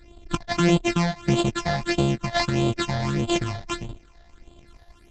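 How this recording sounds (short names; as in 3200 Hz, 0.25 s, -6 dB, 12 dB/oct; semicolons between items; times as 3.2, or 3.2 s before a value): a buzz of ramps at a fixed pitch in blocks of 128 samples; phasing stages 8, 1.6 Hz, lowest notch 340–1800 Hz; Opus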